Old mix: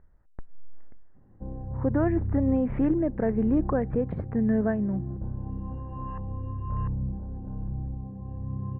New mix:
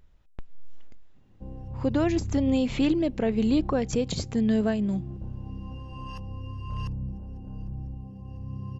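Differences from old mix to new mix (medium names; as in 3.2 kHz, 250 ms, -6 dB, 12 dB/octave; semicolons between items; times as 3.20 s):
background -4.0 dB; master: remove elliptic low-pass 1.8 kHz, stop band 80 dB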